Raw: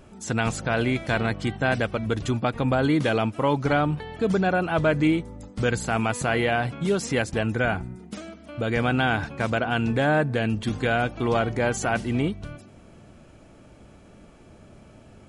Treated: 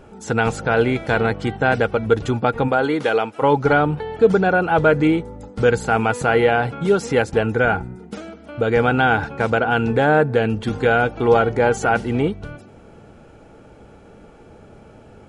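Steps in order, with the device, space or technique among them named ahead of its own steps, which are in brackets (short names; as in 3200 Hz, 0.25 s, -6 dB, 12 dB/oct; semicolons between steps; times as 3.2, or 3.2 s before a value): 2.67–3.41 HPF 310 Hz -> 750 Hz 6 dB/oct; inside a helmet (high shelf 5000 Hz -6 dB; small resonant body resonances 460/820/1400 Hz, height 10 dB, ringing for 35 ms); gain +3 dB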